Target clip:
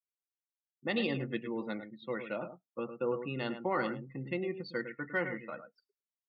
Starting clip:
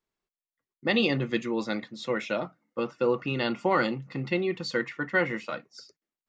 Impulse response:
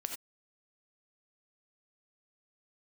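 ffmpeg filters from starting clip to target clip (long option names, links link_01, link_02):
-filter_complex "[0:a]adynamicsmooth=sensitivity=2:basefreq=3900,asplit=2[link_01][link_02];[link_02]adelay=105,volume=-9dB,highshelf=frequency=4000:gain=-2.36[link_03];[link_01][link_03]amix=inputs=2:normalize=0,afftdn=noise_reduction=32:noise_floor=-41,volume=-8dB"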